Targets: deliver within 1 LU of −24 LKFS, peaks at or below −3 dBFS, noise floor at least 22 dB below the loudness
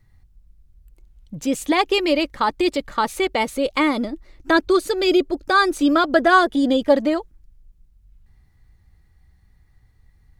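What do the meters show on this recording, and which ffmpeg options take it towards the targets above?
integrated loudness −19.5 LKFS; sample peak −2.5 dBFS; target loudness −24.0 LKFS
→ -af "volume=-4.5dB"

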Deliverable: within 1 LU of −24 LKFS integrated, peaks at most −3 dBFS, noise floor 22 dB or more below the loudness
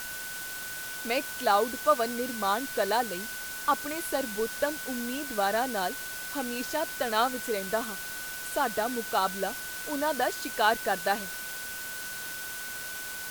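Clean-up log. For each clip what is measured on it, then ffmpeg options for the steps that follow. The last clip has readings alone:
interfering tone 1,500 Hz; level of the tone −39 dBFS; background noise floor −38 dBFS; target noise floor −52 dBFS; integrated loudness −30.0 LKFS; sample peak −10.5 dBFS; target loudness −24.0 LKFS
→ -af "bandreject=frequency=1500:width=30"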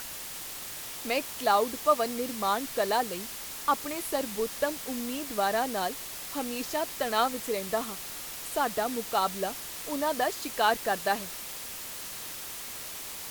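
interfering tone none found; background noise floor −40 dBFS; target noise floor −53 dBFS
→ -af "afftdn=noise_reduction=13:noise_floor=-40"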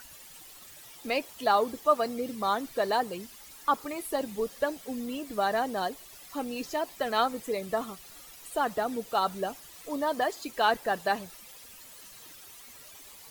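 background noise floor −50 dBFS; target noise floor −53 dBFS
→ -af "afftdn=noise_reduction=6:noise_floor=-50"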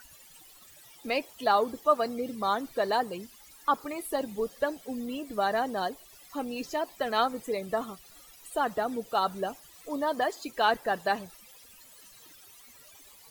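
background noise floor −54 dBFS; integrated loudness −30.5 LKFS; sample peak −11.0 dBFS; target loudness −24.0 LKFS
→ -af "volume=6.5dB"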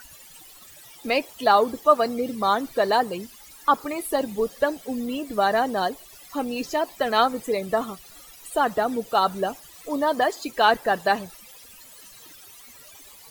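integrated loudness −24.0 LKFS; sample peak −4.5 dBFS; background noise floor −48 dBFS

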